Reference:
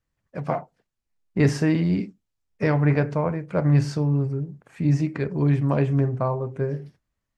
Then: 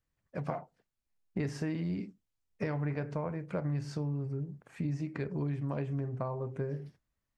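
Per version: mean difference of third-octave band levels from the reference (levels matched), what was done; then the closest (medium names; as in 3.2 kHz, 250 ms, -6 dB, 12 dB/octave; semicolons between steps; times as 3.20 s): 2.0 dB: compression, threshold -27 dBFS, peak gain reduction 13 dB; trim -4.5 dB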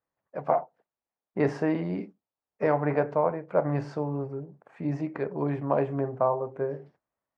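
4.0 dB: band-pass filter 730 Hz, Q 1.3; trim +3.5 dB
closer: first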